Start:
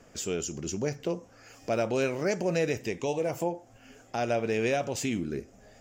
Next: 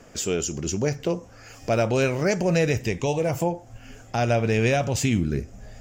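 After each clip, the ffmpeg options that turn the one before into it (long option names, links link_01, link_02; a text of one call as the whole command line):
ffmpeg -i in.wav -af "asubboost=boost=4.5:cutoff=150,volume=6.5dB" out.wav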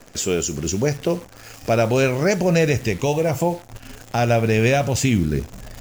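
ffmpeg -i in.wav -af "acrusher=bits=8:dc=4:mix=0:aa=0.000001,volume=4dB" out.wav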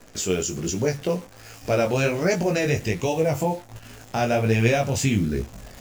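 ffmpeg -i in.wav -af "flanger=delay=17:depth=5:speed=1.3" out.wav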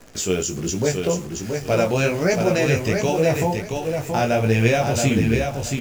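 ffmpeg -i in.wav -af "aecho=1:1:675|1350|2025:0.562|0.129|0.0297,volume=2dB" out.wav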